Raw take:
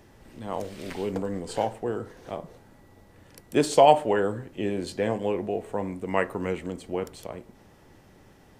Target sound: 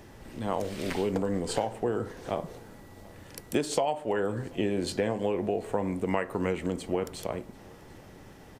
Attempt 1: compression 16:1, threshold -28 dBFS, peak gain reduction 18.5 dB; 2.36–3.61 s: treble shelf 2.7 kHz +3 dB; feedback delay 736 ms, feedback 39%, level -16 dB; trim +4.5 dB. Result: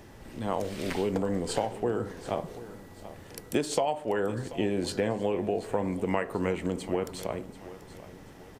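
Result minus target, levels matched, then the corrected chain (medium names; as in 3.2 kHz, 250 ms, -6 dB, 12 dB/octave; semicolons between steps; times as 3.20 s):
echo-to-direct +10 dB
compression 16:1, threshold -28 dBFS, peak gain reduction 18.5 dB; 2.36–3.61 s: treble shelf 2.7 kHz +3 dB; feedback delay 736 ms, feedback 39%, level -26 dB; trim +4.5 dB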